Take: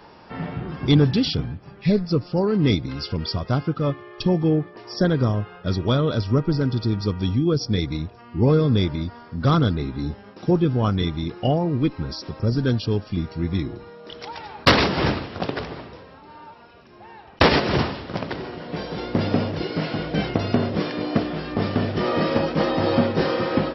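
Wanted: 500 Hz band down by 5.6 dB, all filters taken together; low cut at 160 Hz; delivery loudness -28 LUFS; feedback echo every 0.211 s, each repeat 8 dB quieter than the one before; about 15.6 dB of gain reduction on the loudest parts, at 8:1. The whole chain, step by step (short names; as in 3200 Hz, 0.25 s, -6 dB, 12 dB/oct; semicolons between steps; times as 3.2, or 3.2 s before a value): HPF 160 Hz; bell 500 Hz -7 dB; compressor 8:1, threshold -29 dBFS; feedback echo 0.211 s, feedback 40%, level -8 dB; gain +5.5 dB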